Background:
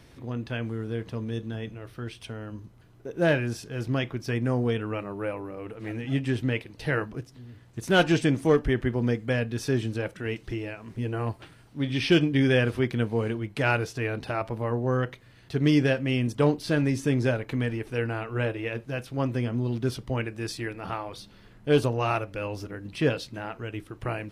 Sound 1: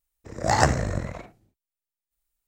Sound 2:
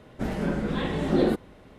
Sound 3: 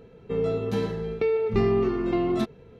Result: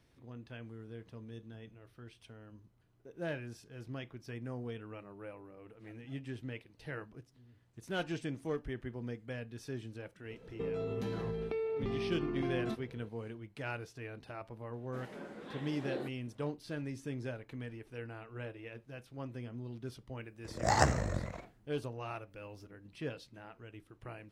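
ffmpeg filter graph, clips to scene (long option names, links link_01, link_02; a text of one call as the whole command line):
ffmpeg -i bed.wav -i cue0.wav -i cue1.wav -i cue2.wav -filter_complex "[0:a]volume=-16dB[link_01];[3:a]acompressor=threshold=-29dB:ratio=6:attack=3.2:release=140:knee=1:detection=peak[link_02];[2:a]highpass=310[link_03];[link_02]atrim=end=2.79,asetpts=PTS-STARTPTS,volume=-4.5dB,afade=type=in:duration=0.004:curve=hsin,afade=type=out:start_time=2.786:duration=0.004:curve=hsin,adelay=10300[link_04];[link_03]atrim=end=1.78,asetpts=PTS-STARTPTS,volume=-15.5dB,afade=type=in:duration=0.004:curve=hsin,afade=type=out:start_time=1.776:duration=0.004:curve=hsin,adelay=14730[link_05];[1:a]atrim=end=2.47,asetpts=PTS-STARTPTS,volume=-7.5dB,afade=type=in:duration=0.004:curve=hsin,afade=type=out:start_time=2.466:duration=0.004:curve=hsin,adelay=20190[link_06];[link_01][link_04][link_05][link_06]amix=inputs=4:normalize=0" out.wav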